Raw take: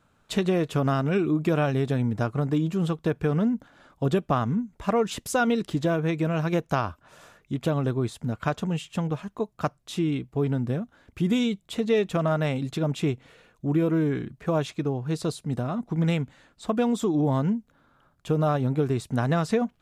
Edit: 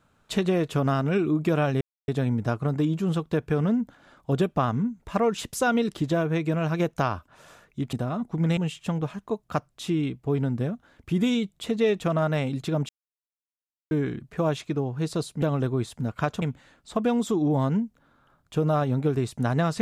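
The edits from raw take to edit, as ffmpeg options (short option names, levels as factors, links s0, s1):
-filter_complex "[0:a]asplit=8[s0][s1][s2][s3][s4][s5][s6][s7];[s0]atrim=end=1.81,asetpts=PTS-STARTPTS,afade=t=out:st=1.806:d=0.004:c=hsin,apad=pad_dur=0.27[s8];[s1]atrim=start=1.81:end=7.662,asetpts=PTS-STARTPTS,afade=t=in:d=0.004:c=hsin[s9];[s2]atrim=start=15.508:end=16.152[s10];[s3]atrim=start=8.658:end=12.98,asetpts=PTS-STARTPTS,afade=t=out:st=4.318:d=0.004:c=hsin[s11];[s4]atrim=start=12.98:end=14,asetpts=PTS-STARTPTS,volume=0[s12];[s5]atrim=start=14:end=15.512,asetpts=PTS-STARTPTS,afade=t=in:d=0.004:c=hsin[s13];[s6]atrim=start=7.658:end=8.662[s14];[s7]atrim=start=16.148[s15];[s8][s9]concat=n=2:v=0:a=1[s16];[s16][s10]acrossfade=d=0.004:c1=hsin:c2=hsin[s17];[s11][s12][s13]concat=n=3:v=0:a=1[s18];[s17][s18]acrossfade=d=0.004:c1=hsin:c2=hsin[s19];[s19][s14]acrossfade=d=0.004:c1=hsin:c2=hsin[s20];[s20][s15]acrossfade=d=0.004:c1=hsin:c2=hsin"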